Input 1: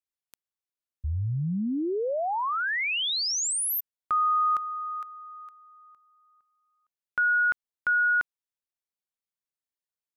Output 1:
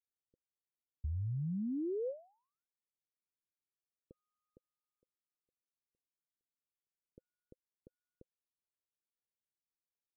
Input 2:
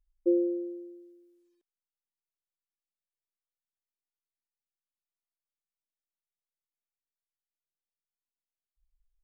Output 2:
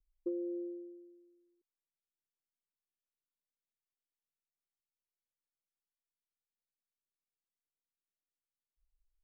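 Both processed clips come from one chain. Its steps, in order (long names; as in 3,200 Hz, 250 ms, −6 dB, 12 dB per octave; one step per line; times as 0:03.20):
Chebyshev low-pass filter 520 Hz, order 6
downward compressor, threshold −31 dBFS
level −4 dB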